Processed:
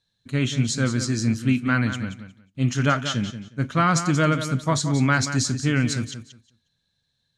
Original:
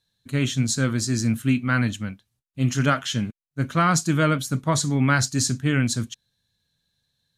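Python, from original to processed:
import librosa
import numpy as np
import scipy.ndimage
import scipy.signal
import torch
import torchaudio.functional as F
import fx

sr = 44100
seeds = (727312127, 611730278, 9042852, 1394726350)

p1 = scipy.signal.sosfilt(scipy.signal.butter(2, 7200.0, 'lowpass', fs=sr, output='sos'), x)
y = p1 + fx.echo_feedback(p1, sr, ms=180, feedback_pct=19, wet_db=-10.5, dry=0)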